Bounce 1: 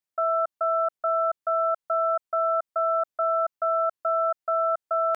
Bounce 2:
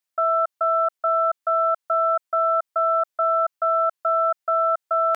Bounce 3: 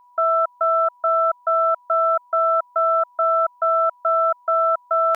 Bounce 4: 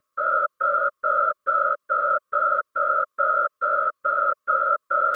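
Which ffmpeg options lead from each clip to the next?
-af "lowshelf=f=500:g=-10,acontrast=51"
-af "aeval=exprs='val(0)+0.00251*sin(2*PI*980*n/s)':c=same,volume=1.26"
-af "afftfilt=real='hypot(re,im)*cos(2*PI*random(0))':imag='hypot(re,im)*sin(2*PI*random(1))':win_size=512:overlap=0.75,asuperstop=centerf=860:order=12:qfactor=1.4,volume=1.68"

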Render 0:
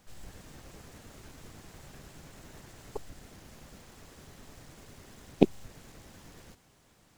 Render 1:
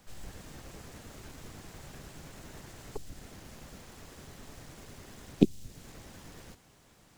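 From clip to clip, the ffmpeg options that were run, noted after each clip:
-filter_complex "[0:a]acrossover=split=370|3000[s0][s1][s2];[s1]acompressor=threshold=0.00355:ratio=6[s3];[s0][s3][s2]amix=inputs=3:normalize=0,volume=1.33"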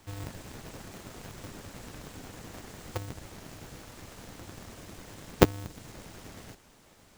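-af "aeval=exprs='val(0)*sgn(sin(2*PI*100*n/s))':c=same,volume=1.33"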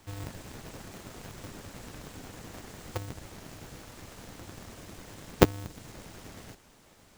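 -af anull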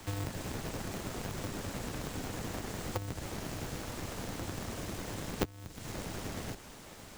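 -filter_complex "[0:a]acrossover=split=100|1000[s0][s1][s2];[s0]acompressor=threshold=0.00282:ratio=4[s3];[s1]acompressor=threshold=0.00501:ratio=4[s4];[s2]acompressor=threshold=0.00251:ratio=4[s5];[s3][s4][s5]amix=inputs=3:normalize=0,volume=2.66"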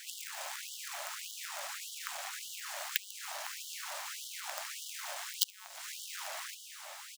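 -af "aecho=1:1:70:0.168,aeval=exprs='0.178*(cos(1*acos(clip(val(0)/0.178,-1,1)))-cos(1*PI/2))+0.0355*(cos(7*acos(clip(val(0)/0.178,-1,1)))-cos(7*PI/2))':c=same,afftfilt=real='re*gte(b*sr/1024,530*pow(2900/530,0.5+0.5*sin(2*PI*1.7*pts/sr)))':imag='im*gte(b*sr/1024,530*pow(2900/530,0.5+0.5*sin(2*PI*1.7*pts/sr)))':win_size=1024:overlap=0.75,volume=5.01"

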